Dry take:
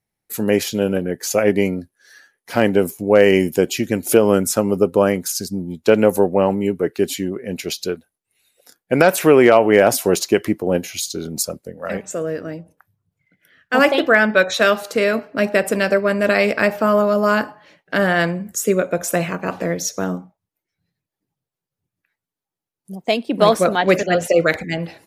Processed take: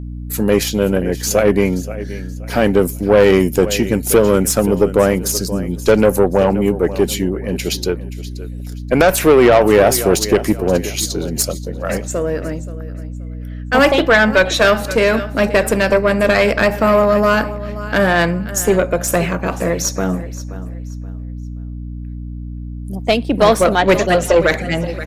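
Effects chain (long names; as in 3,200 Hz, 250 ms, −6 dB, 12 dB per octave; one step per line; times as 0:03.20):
repeating echo 527 ms, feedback 28%, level −16.5 dB
tube saturation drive 9 dB, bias 0.35
mains hum 60 Hz, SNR 11 dB
level +5.5 dB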